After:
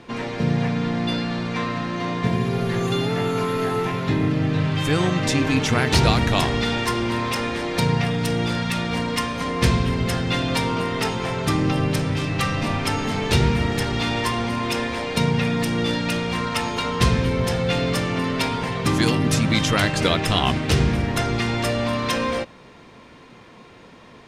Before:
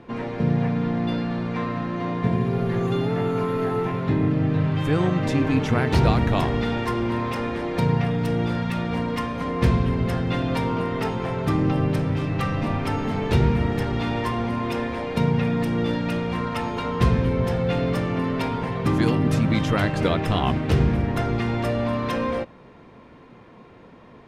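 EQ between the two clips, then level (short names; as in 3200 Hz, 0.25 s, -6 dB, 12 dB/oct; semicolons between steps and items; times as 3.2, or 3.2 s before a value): bell 7400 Hz +14.5 dB 2.9 oct; 0.0 dB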